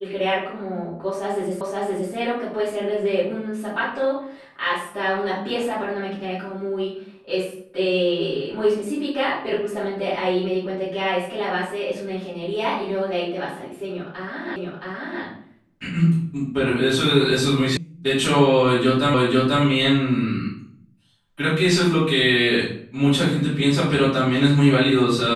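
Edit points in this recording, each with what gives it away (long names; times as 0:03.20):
0:01.61: the same again, the last 0.52 s
0:14.56: the same again, the last 0.67 s
0:17.77: cut off before it has died away
0:19.14: the same again, the last 0.49 s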